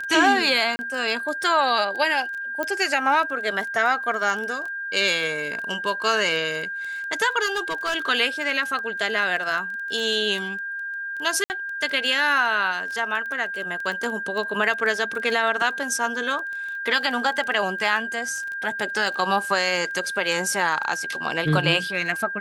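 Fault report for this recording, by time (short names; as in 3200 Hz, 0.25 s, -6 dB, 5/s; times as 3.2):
crackle 12/s -28 dBFS
tone 1600 Hz -28 dBFS
0.76–0.79 gap 30 ms
2.63 pop -13 dBFS
7.45–7.96 clipped -20.5 dBFS
11.44–11.5 gap 59 ms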